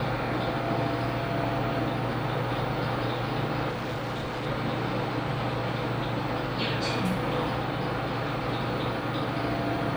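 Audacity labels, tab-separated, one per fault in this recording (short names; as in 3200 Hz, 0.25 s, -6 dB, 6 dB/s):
3.690000	4.470000	clipped -28.5 dBFS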